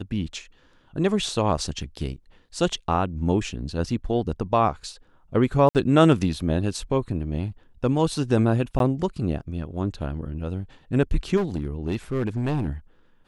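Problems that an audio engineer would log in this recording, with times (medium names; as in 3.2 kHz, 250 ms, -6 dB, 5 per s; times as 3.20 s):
5.69–5.75 s: dropout 58 ms
8.79–8.80 s: dropout 12 ms
11.36–12.68 s: clipped -20.5 dBFS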